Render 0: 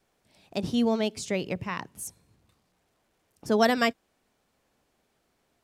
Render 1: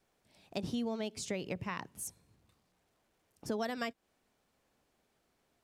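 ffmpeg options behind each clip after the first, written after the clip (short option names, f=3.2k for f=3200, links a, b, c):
-af "acompressor=threshold=-29dB:ratio=6,volume=-4dB"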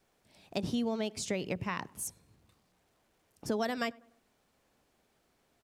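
-filter_complex "[0:a]asplit=2[a][b];[b]adelay=99,lowpass=f=1.5k:p=1,volume=-23dB,asplit=2[c][d];[d]adelay=99,lowpass=f=1.5k:p=1,volume=0.52,asplit=2[e][f];[f]adelay=99,lowpass=f=1.5k:p=1,volume=0.52[g];[a][c][e][g]amix=inputs=4:normalize=0,volume=3.5dB"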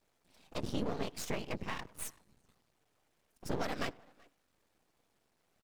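-filter_complex "[0:a]afftfilt=real='hypot(re,im)*cos(2*PI*random(0))':imag='hypot(re,im)*sin(2*PI*random(1))':win_size=512:overlap=0.75,asplit=2[a][b];[b]adelay=380,highpass=300,lowpass=3.4k,asoftclip=type=hard:threshold=-36dB,volume=-24dB[c];[a][c]amix=inputs=2:normalize=0,aeval=exprs='max(val(0),0)':c=same,volume=6dB"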